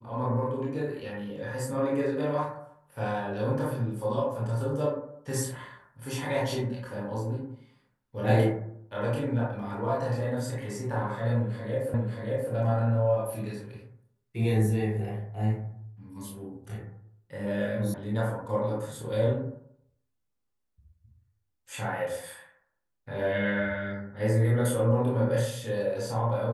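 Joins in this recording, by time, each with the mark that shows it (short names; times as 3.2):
11.94 repeat of the last 0.58 s
17.94 sound cut off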